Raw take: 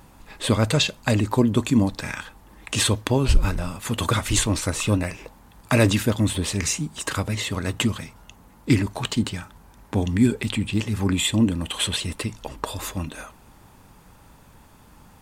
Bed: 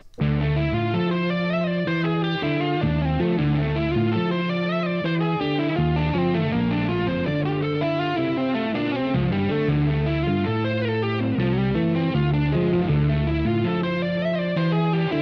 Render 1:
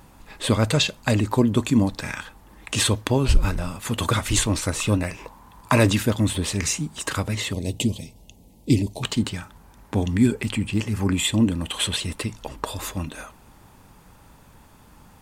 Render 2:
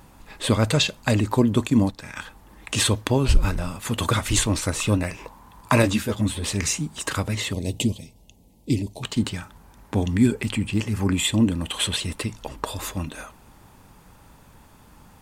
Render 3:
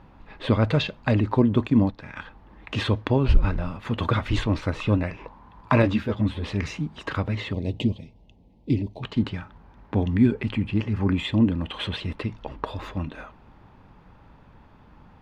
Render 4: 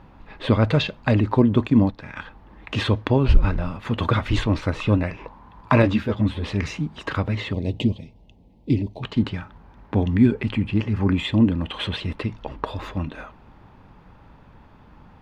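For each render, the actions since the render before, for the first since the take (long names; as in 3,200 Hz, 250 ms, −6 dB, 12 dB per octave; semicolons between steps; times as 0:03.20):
0:05.17–0:05.80: parametric band 1,000 Hz +11.5 dB 0.33 octaves; 0:07.53–0:09.03: Butterworth band-reject 1,400 Hz, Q 0.62; 0:10.31–0:11.24: parametric band 3,700 Hz −8 dB 0.23 octaves
0:01.67–0:02.16: noise gate −28 dBFS, range −8 dB; 0:05.82–0:06.44: string-ensemble chorus; 0:07.93–0:09.16: clip gain −4 dB
high-frequency loss of the air 310 metres
level +2.5 dB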